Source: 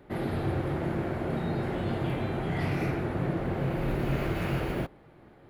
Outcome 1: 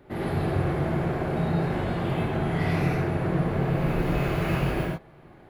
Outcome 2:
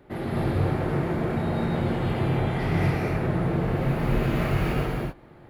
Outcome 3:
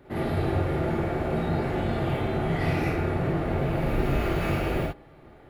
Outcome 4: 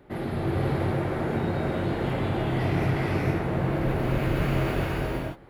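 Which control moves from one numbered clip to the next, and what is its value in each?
non-linear reverb, gate: 130, 280, 80, 510 ms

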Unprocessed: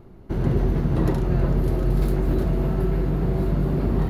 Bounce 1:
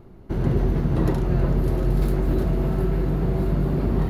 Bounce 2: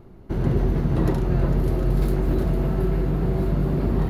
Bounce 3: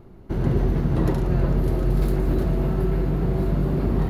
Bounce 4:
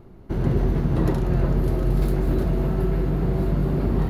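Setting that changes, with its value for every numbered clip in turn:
thinning echo, time: 0.702, 0.454, 0.115, 0.19 s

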